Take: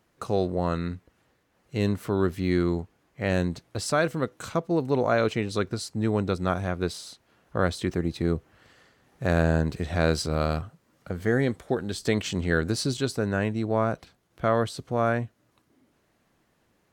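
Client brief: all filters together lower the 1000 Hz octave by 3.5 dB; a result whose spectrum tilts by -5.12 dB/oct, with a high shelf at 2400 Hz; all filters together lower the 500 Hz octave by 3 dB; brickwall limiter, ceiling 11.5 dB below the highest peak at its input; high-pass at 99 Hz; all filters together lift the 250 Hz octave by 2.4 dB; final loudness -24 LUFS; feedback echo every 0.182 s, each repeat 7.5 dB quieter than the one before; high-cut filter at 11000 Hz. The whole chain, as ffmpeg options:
-af "highpass=99,lowpass=11k,equalizer=f=250:t=o:g=5,equalizer=f=500:t=o:g=-4.5,equalizer=f=1k:t=o:g=-4.5,highshelf=f=2.4k:g=3,alimiter=limit=-20.5dB:level=0:latency=1,aecho=1:1:182|364|546|728|910:0.422|0.177|0.0744|0.0312|0.0131,volume=7.5dB"

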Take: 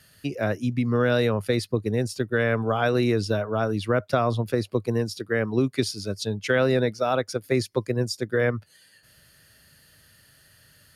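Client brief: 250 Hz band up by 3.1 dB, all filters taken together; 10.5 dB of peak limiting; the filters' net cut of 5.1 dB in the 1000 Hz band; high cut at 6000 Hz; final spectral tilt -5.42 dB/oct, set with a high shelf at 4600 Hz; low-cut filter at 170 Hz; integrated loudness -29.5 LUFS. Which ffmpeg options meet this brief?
-af "highpass=170,lowpass=6k,equalizer=f=250:t=o:g=5,equalizer=f=1k:t=o:g=-8,highshelf=f=4.6k:g=-6,volume=1dB,alimiter=limit=-19dB:level=0:latency=1"

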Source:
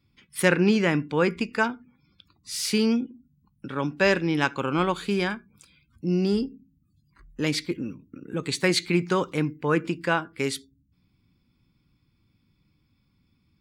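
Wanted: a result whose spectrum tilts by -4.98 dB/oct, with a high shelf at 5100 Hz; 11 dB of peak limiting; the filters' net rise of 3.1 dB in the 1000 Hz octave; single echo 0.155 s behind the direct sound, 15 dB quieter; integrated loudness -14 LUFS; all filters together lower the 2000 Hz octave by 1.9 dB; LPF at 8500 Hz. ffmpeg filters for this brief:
-af "lowpass=8.5k,equalizer=f=1k:t=o:g=5,equalizer=f=2k:t=o:g=-5,highshelf=f=5.1k:g=3,alimiter=limit=-16dB:level=0:latency=1,aecho=1:1:155:0.178,volume=14dB"

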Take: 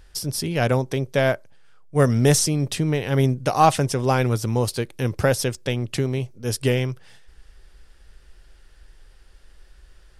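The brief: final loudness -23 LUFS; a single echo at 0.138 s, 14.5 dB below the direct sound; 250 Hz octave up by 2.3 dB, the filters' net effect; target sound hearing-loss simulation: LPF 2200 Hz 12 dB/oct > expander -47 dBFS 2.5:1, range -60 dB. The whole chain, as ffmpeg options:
-af "lowpass=2.2k,equalizer=f=250:t=o:g=3,aecho=1:1:138:0.188,agate=range=-60dB:threshold=-47dB:ratio=2.5,volume=-1.5dB"

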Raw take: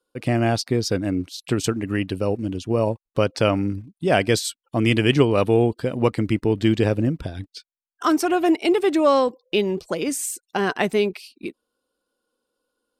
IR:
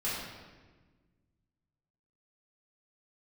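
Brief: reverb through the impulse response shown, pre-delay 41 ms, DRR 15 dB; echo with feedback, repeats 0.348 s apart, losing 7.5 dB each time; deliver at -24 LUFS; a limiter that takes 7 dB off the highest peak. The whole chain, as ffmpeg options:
-filter_complex "[0:a]alimiter=limit=-10.5dB:level=0:latency=1,aecho=1:1:348|696|1044|1392|1740:0.422|0.177|0.0744|0.0312|0.0131,asplit=2[a][b];[1:a]atrim=start_sample=2205,adelay=41[c];[b][c]afir=irnorm=-1:irlink=0,volume=-21.5dB[d];[a][d]amix=inputs=2:normalize=0,volume=-2dB"

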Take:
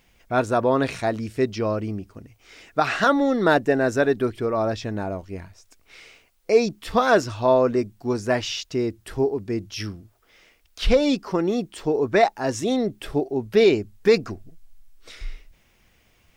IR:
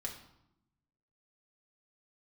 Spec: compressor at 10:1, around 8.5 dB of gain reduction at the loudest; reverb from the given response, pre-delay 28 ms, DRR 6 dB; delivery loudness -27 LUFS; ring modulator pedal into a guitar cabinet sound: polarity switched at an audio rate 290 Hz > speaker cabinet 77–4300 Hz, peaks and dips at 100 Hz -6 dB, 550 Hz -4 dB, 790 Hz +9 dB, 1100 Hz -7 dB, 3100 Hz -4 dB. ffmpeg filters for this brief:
-filter_complex "[0:a]acompressor=threshold=-20dB:ratio=10,asplit=2[a][b];[1:a]atrim=start_sample=2205,adelay=28[c];[b][c]afir=irnorm=-1:irlink=0,volume=-5.5dB[d];[a][d]amix=inputs=2:normalize=0,aeval=exprs='val(0)*sgn(sin(2*PI*290*n/s))':c=same,highpass=77,equalizer=f=100:t=q:w=4:g=-6,equalizer=f=550:t=q:w=4:g=-4,equalizer=f=790:t=q:w=4:g=9,equalizer=f=1.1k:t=q:w=4:g=-7,equalizer=f=3.1k:t=q:w=4:g=-4,lowpass=f=4.3k:w=0.5412,lowpass=f=4.3k:w=1.3066,volume=-1.5dB"

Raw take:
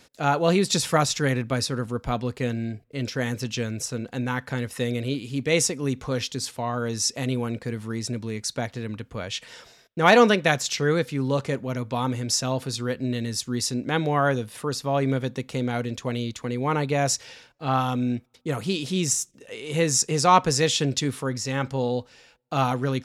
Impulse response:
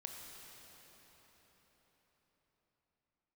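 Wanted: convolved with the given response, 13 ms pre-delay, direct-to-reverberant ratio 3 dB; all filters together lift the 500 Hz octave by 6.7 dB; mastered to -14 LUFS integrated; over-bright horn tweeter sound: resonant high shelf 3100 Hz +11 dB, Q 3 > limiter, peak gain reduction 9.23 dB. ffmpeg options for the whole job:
-filter_complex "[0:a]equalizer=f=500:t=o:g=8,asplit=2[a][b];[1:a]atrim=start_sample=2205,adelay=13[c];[b][c]afir=irnorm=-1:irlink=0,volume=0dB[d];[a][d]amix=inputs=2:normalize=0,highshelf=f=3.1k:t=q:w=3:g=11,volume=3.5dB,alimiter=limit=-1dB:level=0:latency=1"

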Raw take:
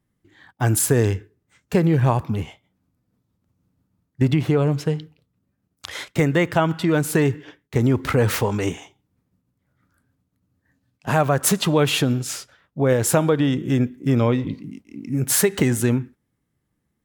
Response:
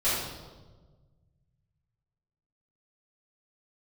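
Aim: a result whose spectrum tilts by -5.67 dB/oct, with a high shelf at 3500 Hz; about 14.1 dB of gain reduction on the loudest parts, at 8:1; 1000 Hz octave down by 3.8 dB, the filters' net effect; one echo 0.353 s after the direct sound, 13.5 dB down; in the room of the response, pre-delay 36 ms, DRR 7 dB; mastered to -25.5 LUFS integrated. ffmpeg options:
-filter_complex "[0:a]equalizer=f=1k:t=o:g=-4.5,highshelf=f=3.5k:g=-7.5,acompressor=threshold=-29dB:ratio=8,aecho=1:1:353:0.211,asplit=2[a][b];[1:a]atrim=start_sample=2205,adelay=36[c];[b][c]afir=irnorm=-1:irlink=0,volume=-19dB[d];[a][d]amix=inputs=2:normalize=0,volume=8dB"

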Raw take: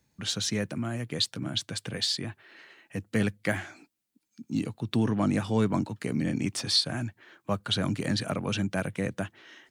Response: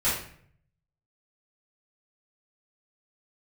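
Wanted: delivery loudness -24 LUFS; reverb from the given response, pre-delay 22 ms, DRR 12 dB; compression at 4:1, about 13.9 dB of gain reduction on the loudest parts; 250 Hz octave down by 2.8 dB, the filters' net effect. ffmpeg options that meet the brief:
-filter_complex "[0:a]equalizer=f=250:t=o:g=-3.5,acompressor=threshold=-39dB:ratio=4,asplit=2[a][b];[1:a]atrim=start_sample=2205,adelay=22[c];[b][c]afir=irnorm=-1:irlink=0,volume=-24dB[d];[a][d]amix=inputs=2:normalize=0,volume=17.5dB"

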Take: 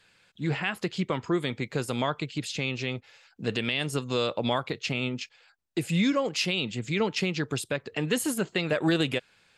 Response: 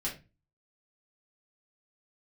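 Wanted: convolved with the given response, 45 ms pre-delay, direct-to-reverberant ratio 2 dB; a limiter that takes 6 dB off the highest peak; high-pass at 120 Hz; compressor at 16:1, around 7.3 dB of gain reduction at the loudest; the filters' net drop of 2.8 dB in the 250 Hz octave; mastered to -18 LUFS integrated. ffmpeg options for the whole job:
-filter_complex "[0:a]highpass=120,equalizer=f=250:t=o:g=-3.5,acompressor=threshold=-29dB:ratio=16,alimiter=limit=-23.5dB:level=0:latency=1,asplit=2[a][b];[1:a]atrim=start_sample=2205,adelay=45[c];[b][c]afir=irnorm=-1:irlink=0,volume=-5dB[d];[a][d]amix=inputs=2:normalize=0,volume=15.5dB"

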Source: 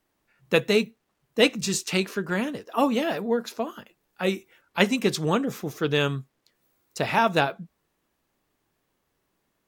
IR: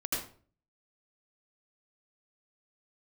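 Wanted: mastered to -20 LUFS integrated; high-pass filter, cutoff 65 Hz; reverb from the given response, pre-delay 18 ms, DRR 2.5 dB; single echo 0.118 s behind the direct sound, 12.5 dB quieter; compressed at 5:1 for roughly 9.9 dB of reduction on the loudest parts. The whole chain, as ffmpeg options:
-filter_complex "[0:a]highpass=65,acompressor=threshold=-25dB:ratio=5,aecho=1:1:118:0.237,asplit=2[a][b];[1:a]atrim=start_sample=2205,adelay=18[c];[b][c]afir=irnorm=-1:irlink=0,volume=-7.5dB[d];[a][d]amix=inputs=2:normalize=0,volume=9dB"

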